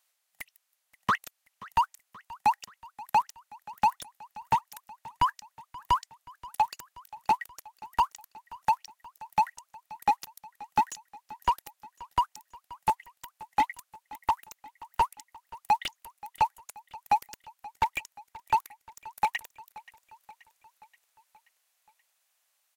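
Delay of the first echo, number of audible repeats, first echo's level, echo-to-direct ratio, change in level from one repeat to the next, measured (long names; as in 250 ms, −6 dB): 529 ms, 4, −20.0 dB, −18.0 dB, −4.5 dB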